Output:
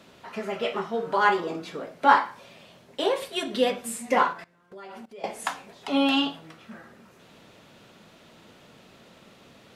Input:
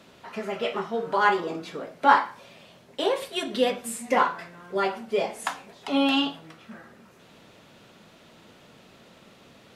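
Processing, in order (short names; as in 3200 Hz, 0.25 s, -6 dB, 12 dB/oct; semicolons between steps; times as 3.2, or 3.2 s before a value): 4.33–5.24 level quantiser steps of 21 dB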